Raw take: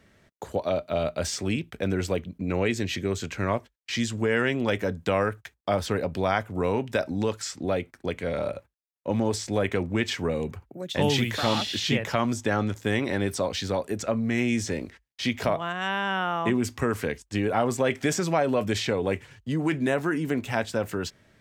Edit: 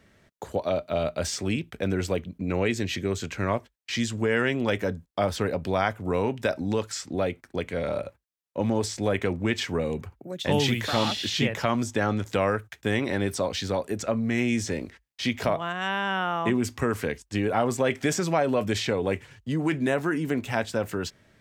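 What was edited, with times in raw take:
5.06–5.56 move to 12.83

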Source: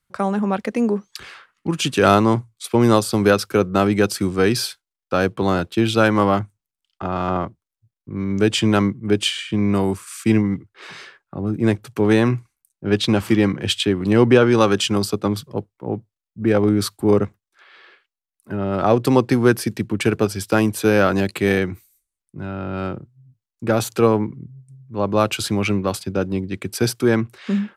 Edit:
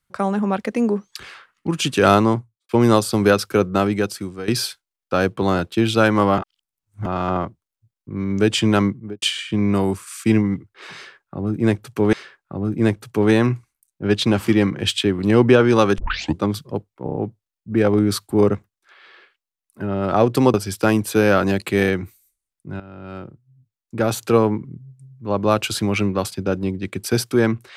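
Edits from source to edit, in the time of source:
2.2–2.69 studio fade out
3.67–4.48 fade out, to -16.5 dB
6.38–7.06 reverse
8.89–9.22 studio fade out
10.95–12.13 loop, 2 plays
14.8 tape start 0.44 s
15.86 stutter 0.03 s, 5 plays
19.24–20.23 cut
22.49–24.02 fade in, from -13.5 dB

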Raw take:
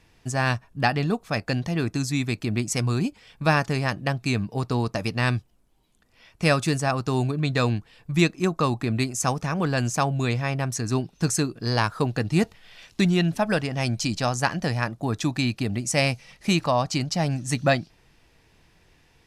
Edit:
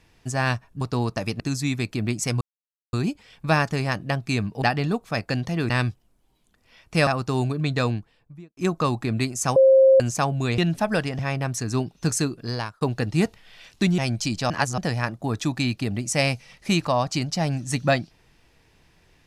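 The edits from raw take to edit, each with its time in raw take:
0.81–1.89 swap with 4.59–5.18
2.9 insert silence 0.52 s
6.55–6.86 cut
7.48–8.36 studio fade out
9.35–9.79 bleep 532 Hz -10.5 dBFS
11.55–11.99 fade out
13.16–13.77 move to 10.37
14.29–14.57 reverse

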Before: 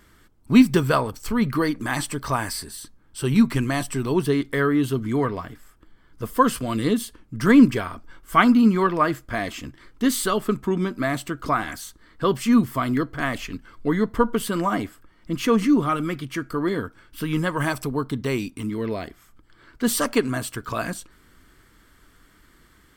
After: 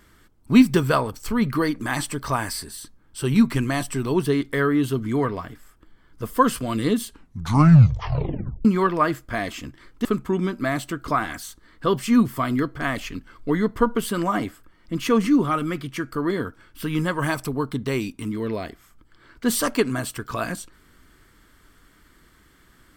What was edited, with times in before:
7.04 tape stop 1.61 s
10.05–10.43 cut

